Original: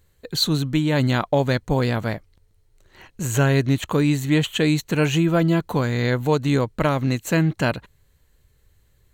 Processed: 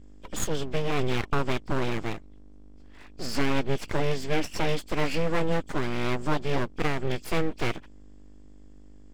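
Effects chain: nonlinear frequency compression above 2200 Hz 1.5:1; hum 50 Hz, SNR 21 dB; full-wave rectifier; gain -4 dB

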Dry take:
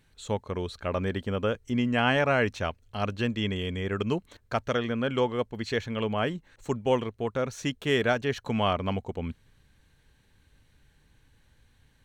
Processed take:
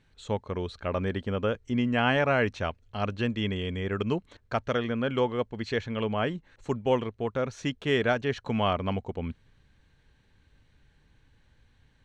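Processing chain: air absorption 79 m

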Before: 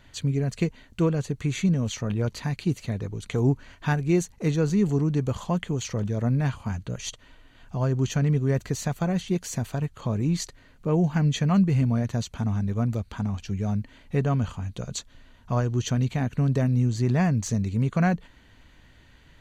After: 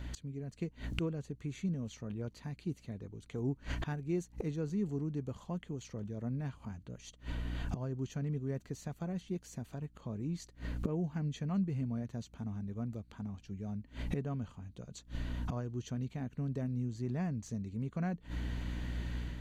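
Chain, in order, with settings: bell 270 Hz +6.5 dB 2.1 oct; buzz 60 Hz, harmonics 5, -45 dBFS -8 dB/oct; flipped gate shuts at -31 dBFS, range -25 dB; AGC gain up to 5 dB; gain +2 dB

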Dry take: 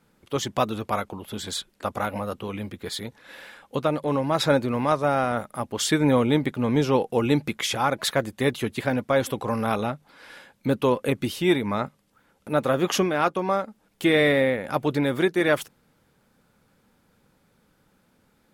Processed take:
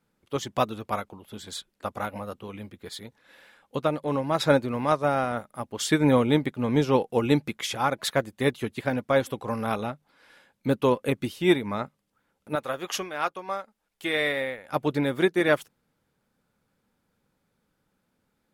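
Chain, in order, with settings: 12.55–14.73 bell 180 Hz -11.5 dB 2.9 oct; upward expander 1.5:1, over -38 dBFS; gain +1 dB

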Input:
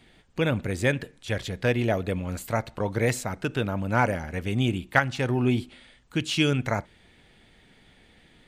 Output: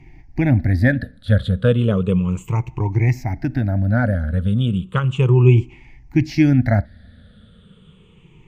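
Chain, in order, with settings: moving spectral ripple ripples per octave 0.72, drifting -0.34 Hz, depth 20 dB; tone controls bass +14 dB, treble -9 dB; 2.34–5.04 compressor 1.5:1, threshold -19 dBFS, peak gain reduction 5 dB; gain -1.5 dB

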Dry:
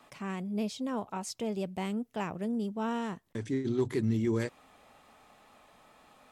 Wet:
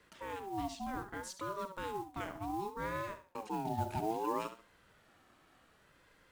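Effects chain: flutter echo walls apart 11.7 m, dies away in 0.38 s; modulation noise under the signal 23 dB; ring modulator with a swept carrier 640 Hz, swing 25%, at 0.65 Hz; gain -4 dB

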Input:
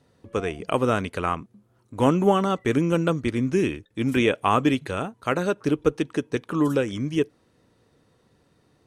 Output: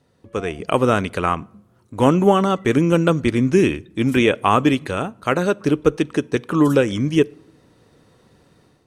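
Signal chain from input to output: AGC gain up to 8.5 dB; on a send: reverb RT60 0.80 s, pre-delay 5 ms, DRR 23 dB

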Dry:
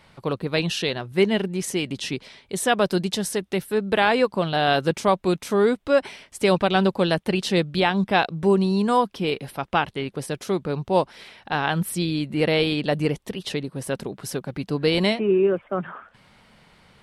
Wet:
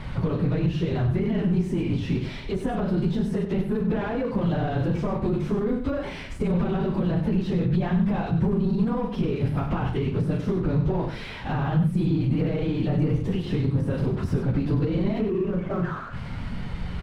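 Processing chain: phase scrambler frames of 50 ms; power-law curve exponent 0.7; notches 50/100/150/200/250/300/350 Hz; doubler 40 ms -9 dB; de-esser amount 80%; bell 570 Hz -4.5 dB 1.3 oct; limiter -16.5 dBFS, peak gain reduction 9.5 dB; compressor 2.5:1, threshold -32 dBFS, peak gain reduction 8.5 dB; RIAA curve playback; echo 96 ms -9 dB

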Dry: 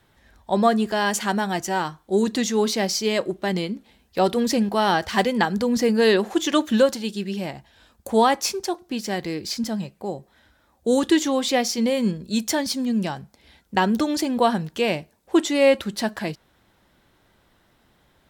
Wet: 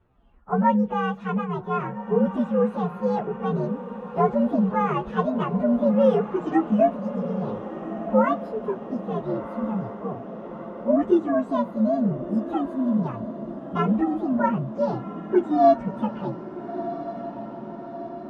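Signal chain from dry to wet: inharmonic rescaling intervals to 129%; LPF 1200 Hz 12 dB/oct; diffused feedback echo 1.355 s, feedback 64%, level -12 dB; gain +1.5 dB

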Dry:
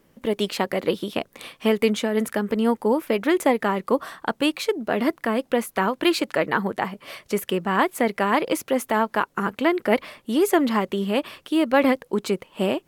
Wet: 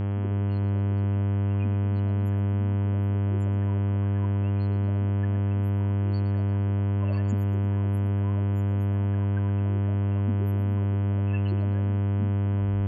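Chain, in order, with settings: tape stop at the end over 1.10 s; limiter -15 dBFS, peak gain reduction 8 dB; transient shaper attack -1 dB, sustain +7 dB; flipped gate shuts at -21 dBFS, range -26 dB; ripple EQ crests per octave 1.4, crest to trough 14 dB; loudest bins only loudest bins 4; buzz 100 Hz, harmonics 33, -28 dBFS -9 dB/oct; on a send: split-band echo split 310 Hz, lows 0.309 s, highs 0.116 s, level -13 dB; on the sum: gain +1.5 dB

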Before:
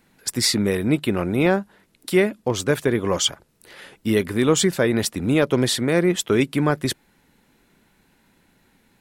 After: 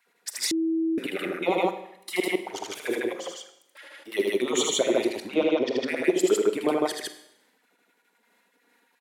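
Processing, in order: 1.49–2.35 comb 1 ms, depth 82%; 3.12–4.12 compressor 4:1, threshold -34 dBFS, peak gain reduction 15.5 dB; 5.27–5.77 Chebyshev low-pass 5700 Hz, order 4; envelope flanger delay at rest 4.3 ms, full sweep at -15.5 dBFS; step gate "x.xx.xx.xx.x.x.x" 116 bpm -24 dB; LFO high-pass sine 8.5 Hz 340–2000 Hz; loudspeakers at several distances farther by 27 m -3 dB, 53 m 0 dB; Schroeder reverb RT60 0.77 s, combs from 33 ms, DRR 10 dB; 0.51–0.98 bleep 325 Hz -16.5 dBFS; gain -5.5 dB

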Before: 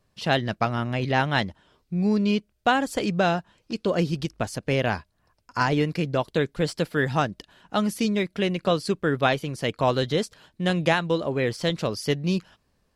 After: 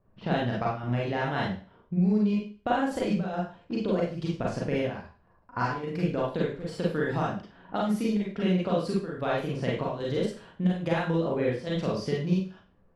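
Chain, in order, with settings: high shelf 2200 Hz -10.5 dB; low-pass opened by the level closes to 1400 Hz, open at -22 dBFS; compressor 6:1, threshold -29 dBFS, peak gain reduction 11.5 dB; chopper 1.2 Hz, depth 65%, duty 80%; Schroeder reverb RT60 0.38 s, combs from 33 ms, DRR -4.5 dB

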